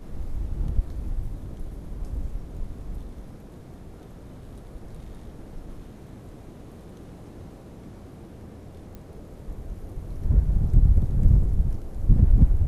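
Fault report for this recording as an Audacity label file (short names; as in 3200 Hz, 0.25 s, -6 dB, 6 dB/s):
8.950000	8.950000	pop -27 dBFS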